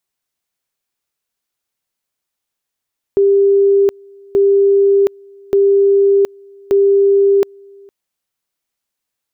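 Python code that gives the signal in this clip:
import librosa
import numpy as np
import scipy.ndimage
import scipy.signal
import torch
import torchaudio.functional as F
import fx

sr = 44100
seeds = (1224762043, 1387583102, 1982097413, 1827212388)

y = fx.two_level_tone(sr, hz=397.0, level_db=-7.5, drop_db=29.5, high_s=0.72, low_s=0.46, rounds=4)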